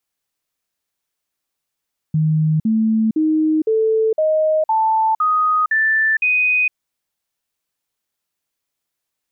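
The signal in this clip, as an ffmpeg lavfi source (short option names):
-f lavfi -i "aevalsrc='0.224*clip(min(mod(t,0.51),0.46-mod(t,0.51))/0.005,0,1)*sin(2*PI*156*pow(2,floor(t/0.51)/2)*mod(t,0.51))':d=4.59:s=44100"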